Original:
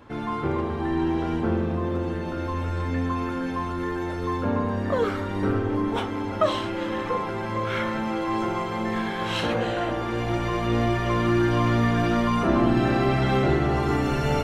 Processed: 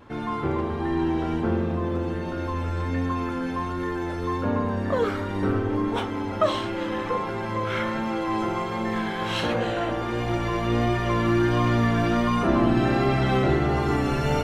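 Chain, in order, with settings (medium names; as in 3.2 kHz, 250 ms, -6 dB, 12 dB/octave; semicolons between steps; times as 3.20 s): vibrato 1.4 Hz 22 cents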